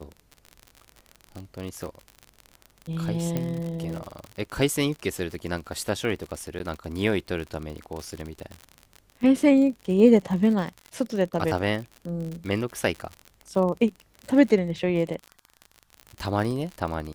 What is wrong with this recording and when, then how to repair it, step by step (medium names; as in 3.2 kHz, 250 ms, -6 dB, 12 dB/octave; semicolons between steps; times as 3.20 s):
crackle 52 per s -31 dBFS
3.37 s: pop -14 dBFS
6.59–6.60 s: dropout 9.8 ms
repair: de-click; interpolate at 6.59 s, 9.8 ms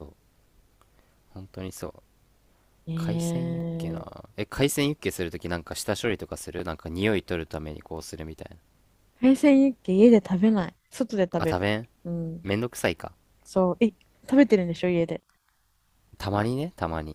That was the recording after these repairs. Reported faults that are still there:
nothing left